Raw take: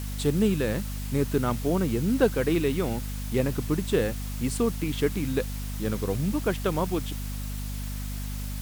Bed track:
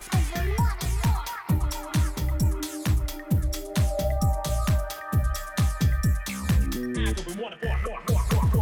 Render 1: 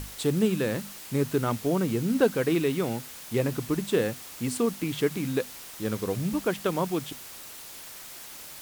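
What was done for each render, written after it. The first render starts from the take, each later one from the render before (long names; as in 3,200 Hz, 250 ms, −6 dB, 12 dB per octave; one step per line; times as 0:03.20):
mains-hum notches 50/100/150/200/250 Hz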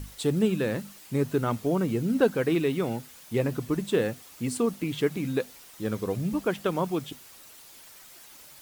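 broadband denoise 8 dB, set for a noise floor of −44 dBFS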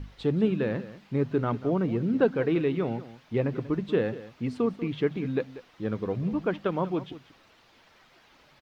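high-frequency loss of the air 260 metres
single-tap delay 189 ms −15.5 dB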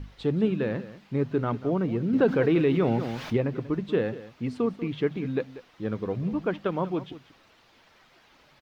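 0:02.13–0:03.37: envelope flattener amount 50%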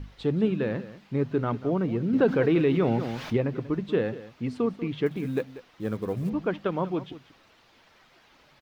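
0:05.06–0:06.30: floating-point word with a short mantissa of 4 bits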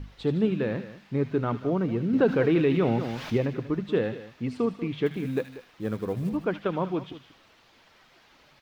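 delay with a high-pass on its return 77 ms, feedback 55%, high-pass 2,100 Hz, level −7 dB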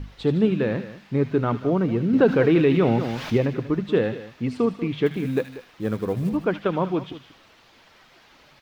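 level +4.5 dB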